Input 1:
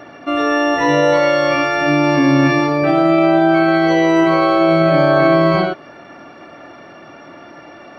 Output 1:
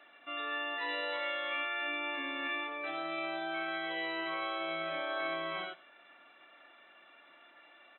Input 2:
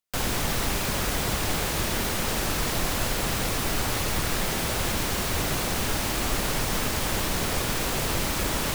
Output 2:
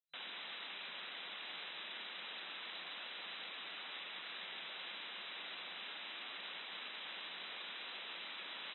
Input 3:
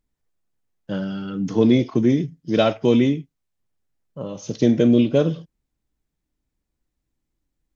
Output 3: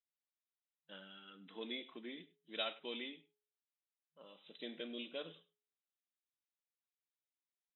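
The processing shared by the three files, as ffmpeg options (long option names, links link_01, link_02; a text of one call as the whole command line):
ffmpeg -i in.wav -filter_complex "[0:a]aderivative,bandreject=frequency=419.9:width_type=h:width=4,bandreject=frequency=839.8:width_type=h:width=4,bandreject=frequency=1259.7:width_type=h:width=4,afftfilt=real='re*between(b*sr/4096,160,4000)':imag='im*between(b*sr/4096,160,4000)':win_size=4096:overlap=0.75,asplit=2[link_01][link_02];[link_02]aecho=0:1:100:0.1[link_03];[link_01][link_03]amix=inputs=2:normalize=0,volume=-4.5dB" out.wav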